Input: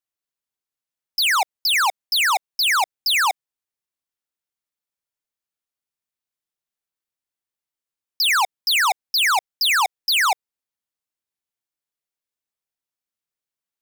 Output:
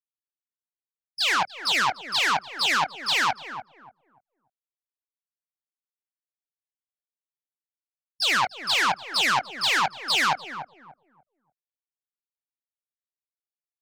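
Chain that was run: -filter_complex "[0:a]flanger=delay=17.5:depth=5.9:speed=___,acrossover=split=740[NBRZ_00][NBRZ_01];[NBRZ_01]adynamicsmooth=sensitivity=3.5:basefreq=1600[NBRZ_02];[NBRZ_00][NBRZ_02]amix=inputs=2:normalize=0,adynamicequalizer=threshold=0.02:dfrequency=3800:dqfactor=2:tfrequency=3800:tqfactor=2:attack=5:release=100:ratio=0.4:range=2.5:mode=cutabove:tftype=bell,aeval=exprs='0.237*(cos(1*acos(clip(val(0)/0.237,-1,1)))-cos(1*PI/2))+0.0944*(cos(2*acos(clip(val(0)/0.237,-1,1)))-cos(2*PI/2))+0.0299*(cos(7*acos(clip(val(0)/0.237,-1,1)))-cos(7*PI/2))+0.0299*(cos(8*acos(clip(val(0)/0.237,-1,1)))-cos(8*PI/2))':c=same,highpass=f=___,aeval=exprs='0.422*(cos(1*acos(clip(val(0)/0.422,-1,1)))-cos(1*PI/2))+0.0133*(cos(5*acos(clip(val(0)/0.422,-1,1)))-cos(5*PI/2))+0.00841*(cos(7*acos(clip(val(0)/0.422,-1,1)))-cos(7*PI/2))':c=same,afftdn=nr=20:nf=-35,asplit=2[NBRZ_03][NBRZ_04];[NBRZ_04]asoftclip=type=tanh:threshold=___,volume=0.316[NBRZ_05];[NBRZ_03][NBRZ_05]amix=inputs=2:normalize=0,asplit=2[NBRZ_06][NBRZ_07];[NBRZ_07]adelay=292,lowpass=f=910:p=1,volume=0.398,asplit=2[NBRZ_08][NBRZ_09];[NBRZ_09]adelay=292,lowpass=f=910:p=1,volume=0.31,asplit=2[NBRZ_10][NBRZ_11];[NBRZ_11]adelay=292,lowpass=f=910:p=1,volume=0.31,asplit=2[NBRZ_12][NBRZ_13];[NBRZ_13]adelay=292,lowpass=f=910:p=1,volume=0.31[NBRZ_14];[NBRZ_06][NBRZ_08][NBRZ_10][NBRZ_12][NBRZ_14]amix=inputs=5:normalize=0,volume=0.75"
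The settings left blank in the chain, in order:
1.2, 140, 0.0668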